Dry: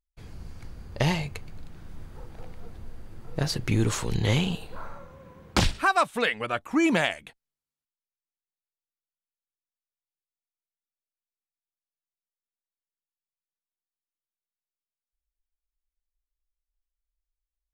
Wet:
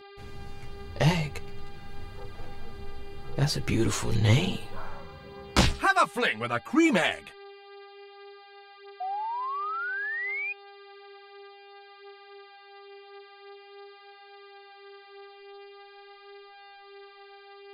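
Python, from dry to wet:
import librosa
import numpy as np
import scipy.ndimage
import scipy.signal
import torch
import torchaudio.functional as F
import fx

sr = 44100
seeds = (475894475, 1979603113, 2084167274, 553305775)

y = fx.dmg_buzz(x, sr, base_hz=400.0, harmonics=12, level_db=-49.0, tilt_db=-5, odd_only=False)
y = fx.chorus_voices(y, sr, voices=2, hz=0.45, base_ms=12, depth_ms=3.4, mix_pct=45)
y = fx.spec_paint(y, sr, seeds[0], shape='rise', start_s=9.0, length_s=1.53, low_hz=720.0, high_hz=2500.0, level_db=-35.0)
y = F.gain(torch.from_numpy(y), 3.0).numpy()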